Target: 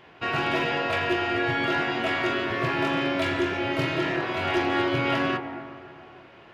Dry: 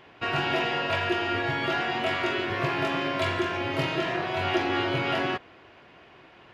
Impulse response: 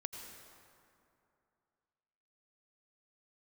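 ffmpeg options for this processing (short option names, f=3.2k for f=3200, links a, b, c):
-filter_complex "[0:a]asoftclip=type=hard:threshold=-18.5dB,asplit=2[a][b];[1:a]atrim=start_sample=2205,lowpass=2.3k,adelay=25[c];[b][c]afir=irnorm=-1:irlink=0,volume=-1.5dB[d];[a][d]amix=inputs=2:normalize=0"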